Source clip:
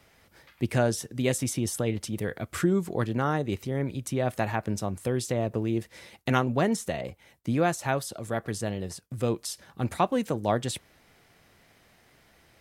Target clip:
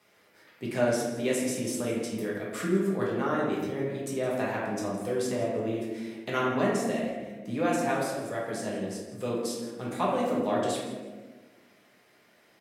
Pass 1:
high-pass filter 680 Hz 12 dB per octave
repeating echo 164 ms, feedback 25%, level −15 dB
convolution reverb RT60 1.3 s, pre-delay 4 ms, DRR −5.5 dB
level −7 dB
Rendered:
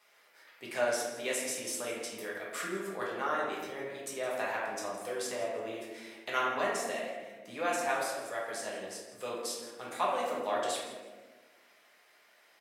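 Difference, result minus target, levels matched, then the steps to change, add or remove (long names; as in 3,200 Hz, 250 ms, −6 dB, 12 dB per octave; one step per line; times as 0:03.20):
250 Hz band −9.5 dB
change: high-pass filter 210 Hz 12 dB per octave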